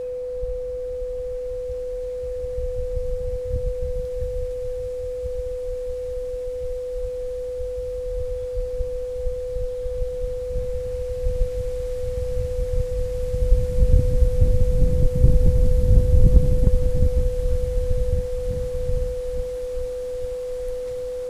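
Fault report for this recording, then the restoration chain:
tone 500 Hz -26 dBFS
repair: notch 500 Hz, Q 30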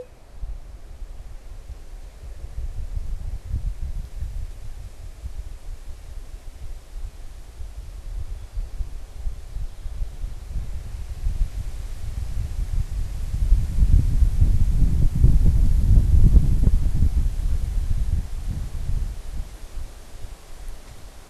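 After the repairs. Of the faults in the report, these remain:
none

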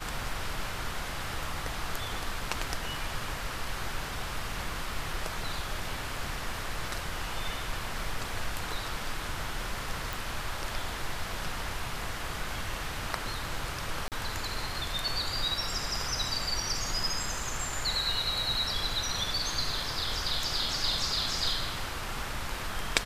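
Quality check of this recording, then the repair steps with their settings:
10.13 pop
14.08–14.12 gap 38 ms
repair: de-click; interpolate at 14.08, 38 ms

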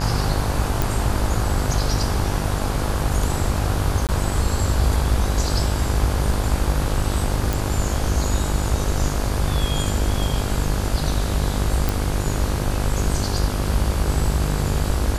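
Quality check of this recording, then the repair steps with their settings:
buzz 50 Hz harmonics 34 -25 dBFS
0.82 pop
4.07–4.09 gap 18 ms
7.53 pop
11.89 pop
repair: de-click; de-hum 50 Hz, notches 34; interpolate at 4.07, 18 ms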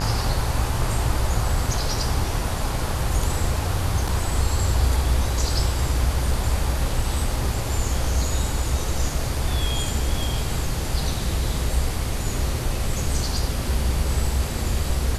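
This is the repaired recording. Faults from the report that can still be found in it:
none

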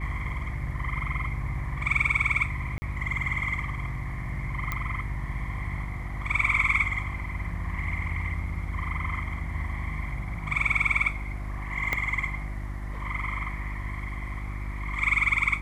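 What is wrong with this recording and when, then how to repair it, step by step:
hum 50 Hz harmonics 7 -34 dBFS
2.78–2.82 gap 40 ms
4.72 pop -15 dBFS
11.93 pop -12 dBFS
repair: de-click; de-hum 50 Hz, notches 7; interpolate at 2.78, 40 ms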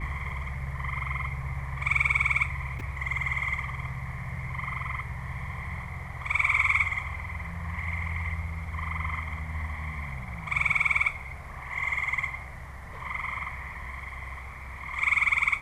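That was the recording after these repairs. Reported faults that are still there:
4.72 pop
11.93 pop

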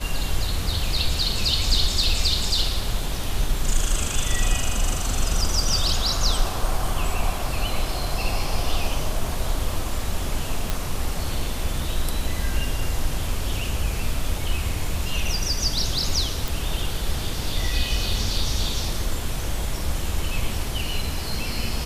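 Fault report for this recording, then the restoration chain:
10.7 pop -8 dBFS
16.48 pop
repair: de-click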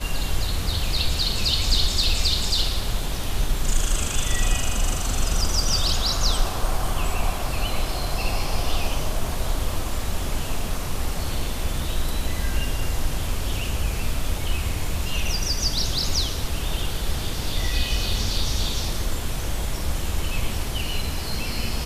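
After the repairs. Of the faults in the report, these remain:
none

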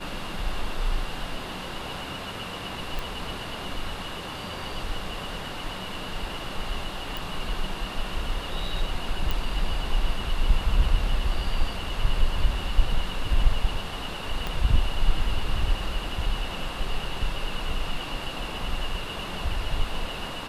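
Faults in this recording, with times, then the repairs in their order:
2.99 pop
7.17 pop
9.31 pop
14.47 pop -16 dBFS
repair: de-click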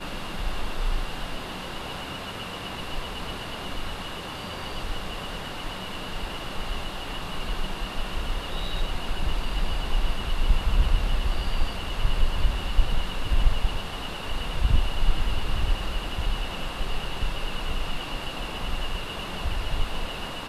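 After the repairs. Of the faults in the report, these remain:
14.47 pop

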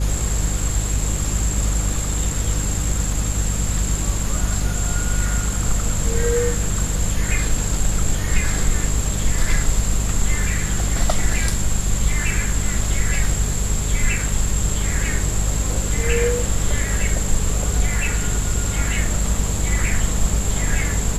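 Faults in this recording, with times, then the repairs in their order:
hum 50 Hz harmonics 4 -23 dBFS
16.39 gap 2.9 ms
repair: de-hum 50 Hz, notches 4; interpolate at 16.39, 2.9 ms

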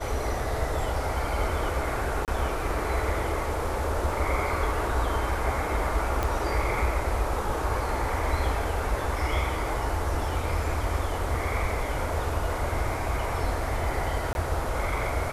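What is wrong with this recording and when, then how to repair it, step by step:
2.25–2.28 gap 28 ms
6.23 pop
14.33–14.35 gap 21 ms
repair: de-click; interpolate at 2.25, 28 ms; interpolate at 14.33, 21 ms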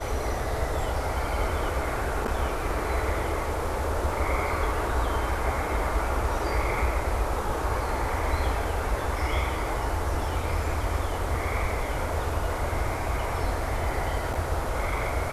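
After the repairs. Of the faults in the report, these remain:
none

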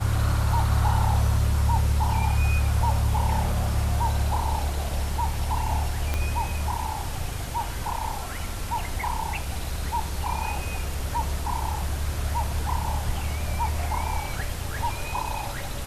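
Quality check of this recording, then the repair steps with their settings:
6.14 pop -12 dBFS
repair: de-click

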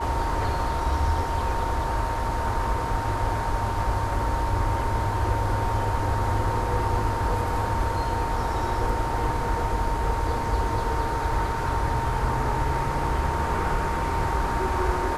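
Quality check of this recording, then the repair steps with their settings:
tone 920 Hz -29 dBFS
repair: notch 920 Hz, Q 30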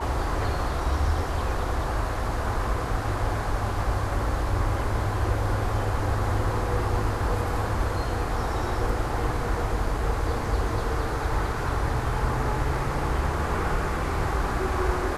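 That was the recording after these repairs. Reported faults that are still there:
none

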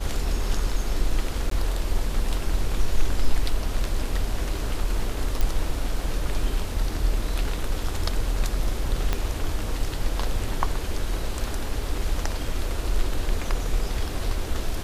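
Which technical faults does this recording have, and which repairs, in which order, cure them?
1.5–1.51 gap 13 ms
5.41 pop
9.13 pop -10 dBFS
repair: de-click; interpolate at 1.5, 13 ms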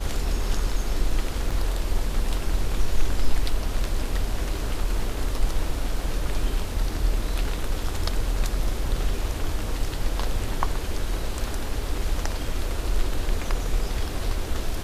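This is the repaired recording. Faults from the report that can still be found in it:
9.13 pop

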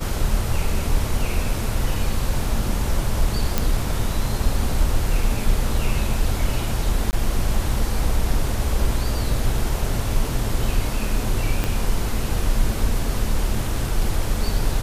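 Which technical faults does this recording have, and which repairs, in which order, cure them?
3.58 pop
7.11–7.13 gap 19 ms
11.64 pop -8 dBFS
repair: de-click; interpolate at 7.11, 19 ms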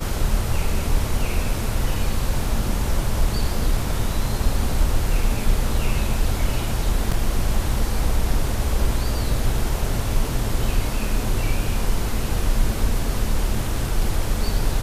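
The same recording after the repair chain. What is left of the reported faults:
11.64 pop

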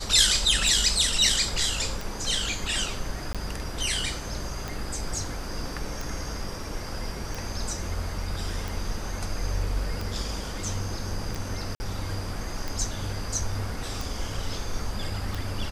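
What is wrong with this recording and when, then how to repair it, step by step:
tick 45 rpm
3.33–3.35 gap 16 ms
11.75–11.8 gap 50 ms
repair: de-click; interpolate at 3.33, 16 ms; interpolate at 11.75, 50 ms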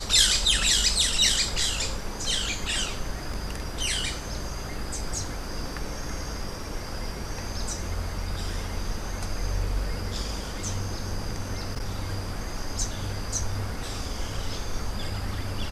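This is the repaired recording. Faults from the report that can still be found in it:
none

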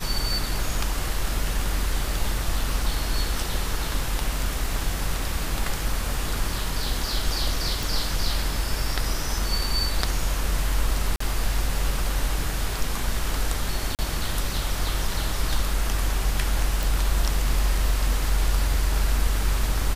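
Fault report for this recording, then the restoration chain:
7.83 pop
11.16–11.2 gap 44 ms
13.95–13.99 gap 38 ms
16.83 pop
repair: de-click; interpolate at 11.16, 44 ms; interpolate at 13.95, 38 ms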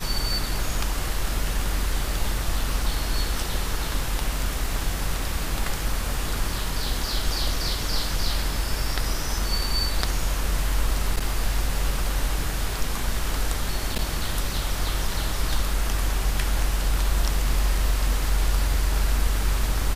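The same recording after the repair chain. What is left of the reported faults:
none

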